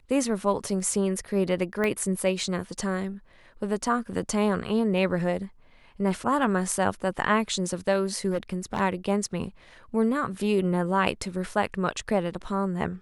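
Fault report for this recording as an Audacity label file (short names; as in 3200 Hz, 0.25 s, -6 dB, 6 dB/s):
1.840000	1.840000	pop -15 dBFS
8.300000	8.810000	clipped -22.5 dBFS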